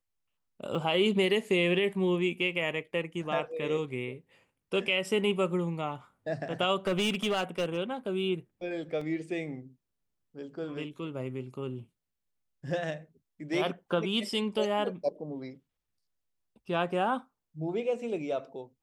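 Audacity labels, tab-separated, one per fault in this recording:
0.750000	0.750000	gap 2.3 ms
6.870000	7.770000	clipped -24.5 dBFS
9.010000	9.010000	gap 3.8 ms

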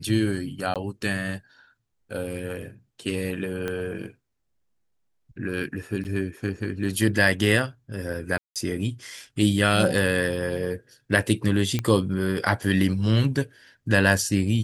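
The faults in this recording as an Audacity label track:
0.740000	0.760000	gap 17 ms
3.680000	3.680000	pop -16 dBFS
6.040000	6.050000	gap 8.9 ms
8.380000	8.560000	gap 0.177 s
11.790000	11.790000	pop -12 dBFS

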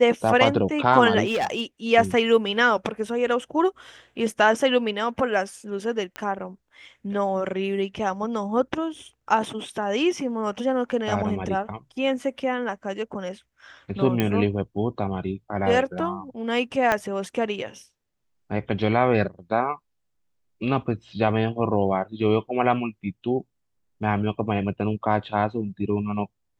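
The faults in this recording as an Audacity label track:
1.250000	1.610000	clipped -20 dBFS
6.160000	6.160000	pop -16 dBFS
14.200000	14.200000	pop -9 dBFS
16.920000	16.920000	pop -8 dBFS

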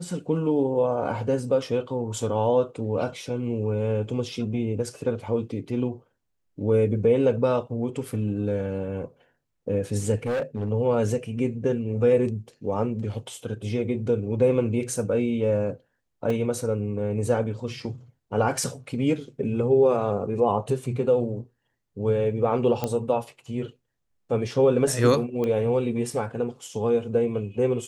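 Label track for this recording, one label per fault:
10.260000	10.690000	clipped -23 dBFS
16.300000	16.300000	gap 2.2 ms
22.840000	22.840000	pop -12 dBFS
25.440000	25.440000	pop -17 dBFS

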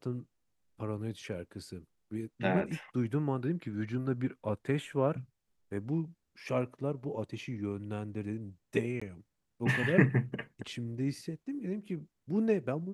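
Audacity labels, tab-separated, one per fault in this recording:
9.000000	9.020000	gap 15 ms

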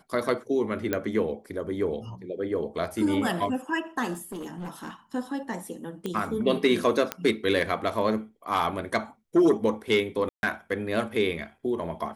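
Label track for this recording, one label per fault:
0.930000	0.930000	pop -12 dBFS
4.130000	4.910000	clipped -32 dBFS
6.060000	6.060000	pop -18 dBFS
7.120000	7.120000	pop -11 dBFS
10.290000	10.430000	gap 0.141 s

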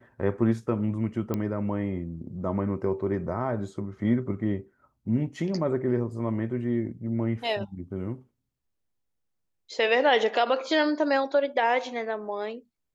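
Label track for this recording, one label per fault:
1.340000	1.340000	pop -16 dBFS

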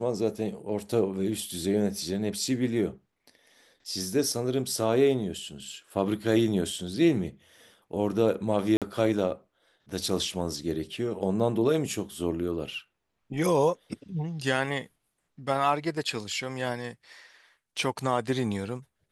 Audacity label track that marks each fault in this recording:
8.770000	8.820000	gap 47 ms

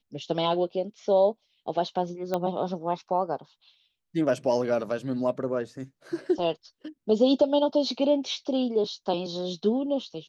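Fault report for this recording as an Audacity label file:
2.340000	2.340000	pop -15 dBFS

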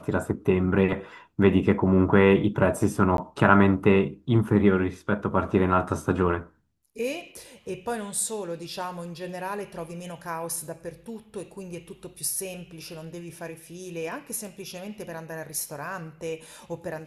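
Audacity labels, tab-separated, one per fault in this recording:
3.170000	3.180000	gap 12 ms

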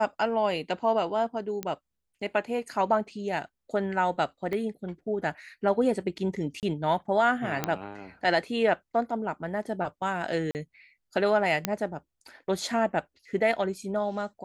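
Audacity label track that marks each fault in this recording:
1.630000	1.630000	pop -16 dBFS
4.530000	4.530000	pop -21 dBFS
6.600000	6.630000	gap 28 ms
7.640000	7.640000	pop -11 dBFS
10.510000	10.550000	gap 39 ms
11.650000	11.650000	pop -8 dBFS

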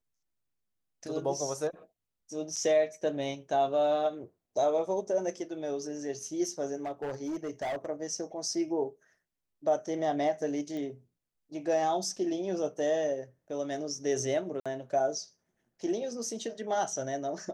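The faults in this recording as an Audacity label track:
2.560000	2.570000	gap 6.8 ms
6.820000	7.860000	clipped -30.5 dBFS
10.770000	10.770000	pop -28 dBFS
14.600000	14.660000	gap 56 ms

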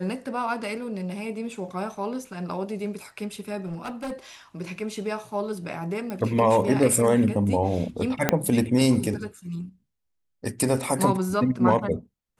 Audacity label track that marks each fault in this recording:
3.650000	4.130000	clipped -28.5 dBFS
6.100000	6.100000	pop -20 dBFS
8.290000	8.290000	pop -4 dBFS

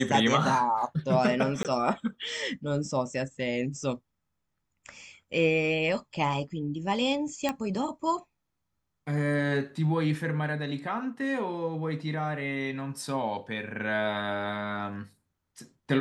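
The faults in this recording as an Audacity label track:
1.630000	1.650000	gap 18 ms
7.490000	7.490000	pop -14 dBFS

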